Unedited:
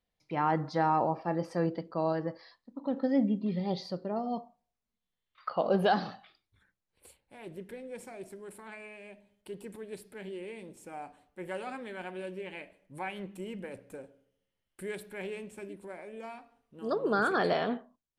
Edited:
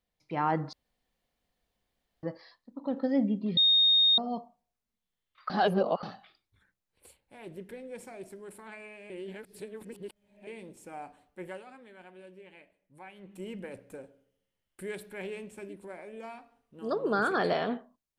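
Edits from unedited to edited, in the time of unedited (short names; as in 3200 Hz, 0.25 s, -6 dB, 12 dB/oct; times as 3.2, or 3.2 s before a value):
0.73–2.23 room tone
3.57–4.18 bleep 3700 Hz -19 dBFS
5.5–6.03 reverse
9.1–10.47 reverse
11.41–13.44 dip -11 dB, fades 0.23 s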